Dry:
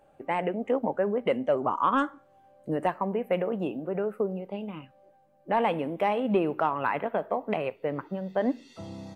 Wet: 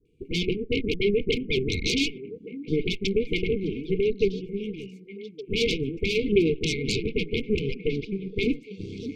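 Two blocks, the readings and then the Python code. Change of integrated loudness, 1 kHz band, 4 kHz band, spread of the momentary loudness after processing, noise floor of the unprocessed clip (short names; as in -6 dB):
+2.0 dB, under -40 dB, +16.5 dB, 13 LU, -61 dBFS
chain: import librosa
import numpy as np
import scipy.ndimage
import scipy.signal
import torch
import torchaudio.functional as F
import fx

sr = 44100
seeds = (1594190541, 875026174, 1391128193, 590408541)

p1 = fx.lowpass(x, sr, hz=2700.0, slope=6)
p2 = fx.env_lowpass_down(p1, sr, base_hz=2100.0, full_db=-25.5)
p3 = fx.peak_eq(p2, sr, hz=160.0, db=-2.0, octaves=0.31)
p4 = p3 + 0.36 * np.pad(p3, (int(2.1 * sr / 1000.0), 0))[:len(p3)]
p5 = fx.level_steps(p4, sr, step_db=14)
p6 = p4 + F.gain(torch.from_numpy(p5), 0.0).numpy()
p7 = np.clip(p6, -10.0 ** (-12.5 / 20.0), 10.0 ** (-12.5 / 20.0))
p8 = fx.dispersion(p7, sr, late='highs', ms=57.0, hz=700.0)
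p9 = fx.cheby_harmonics(p8, sr, harmonics=(8,), levels_db=(-11,), full_scale_db=-10.0)
p10 = fx.brickwall_bandstop(p9, sr, low_hz=480.0, high_hz=2100.0)
y = p10 + fx.echo_stepped(p10, sr, ms=584, hz=230.0, octaves=1.4, feedback_pct=70, wet_db=-9.5, dry=0)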